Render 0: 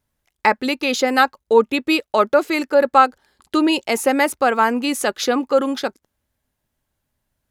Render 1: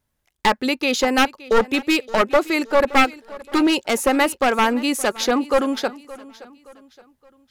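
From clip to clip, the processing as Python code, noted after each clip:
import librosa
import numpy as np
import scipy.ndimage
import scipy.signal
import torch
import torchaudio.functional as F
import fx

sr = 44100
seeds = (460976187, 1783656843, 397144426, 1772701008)

y = np.minimum(x, 2.0 * 10.0 ** (-12.5 / 20.0) - x)
y = fx.echo_feedback(y, sr, ms=570, feedback_pct=41, wet_db=-19.5)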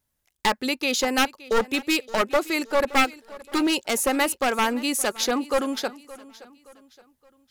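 y = fx.high_shelf(x, sr, hz=4300.0, db=8.5)
y = y * 10.0 ** (-5.5 / 20.0)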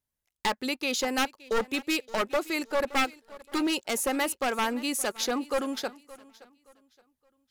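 y = fx.leveller(x, sr, passes=1)
y = y * 10.0 ** (-8.5 / 20.0)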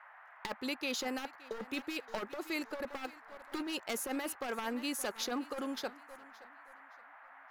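y = fx.over_compress(x, sr, threshold_db=-28.0, ratio=-0.5)
y = fx.peak_eq(y, sr, hz=8300.0, db=-5.0, octaves=0.68)
y = fx.dmg_noise_band(y, sr, seeds[0], low_hz=680.0, high_hz=1900.0, level_db=-48.0)
y = y * 10.0 ** (-8.0 / 20.0)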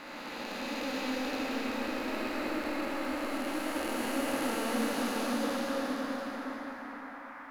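y = fx.spec_blur(x, sr, span_ms=1200.0)
y = fx.room_shoebox(y, sr, seeds[1], volume_m3=120.0, walls='hard', distance_m=0.5)
y = y * 10.0 ** (7.5 / 20.0)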